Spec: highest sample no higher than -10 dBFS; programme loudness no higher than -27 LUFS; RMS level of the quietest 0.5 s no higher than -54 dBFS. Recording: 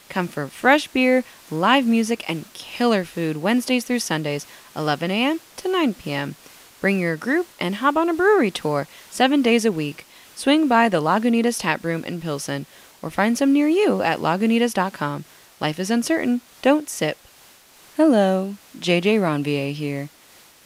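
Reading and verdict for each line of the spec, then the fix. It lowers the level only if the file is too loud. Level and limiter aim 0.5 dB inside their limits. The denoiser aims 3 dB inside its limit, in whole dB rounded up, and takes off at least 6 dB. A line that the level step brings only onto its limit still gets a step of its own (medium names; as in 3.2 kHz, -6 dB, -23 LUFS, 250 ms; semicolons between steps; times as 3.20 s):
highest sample -3.0 dBFS: fail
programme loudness -21.0 LUFS: fail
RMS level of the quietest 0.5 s -50 dBFS: fail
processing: trim -6.5 dB; peak limiter -10.5 dBFS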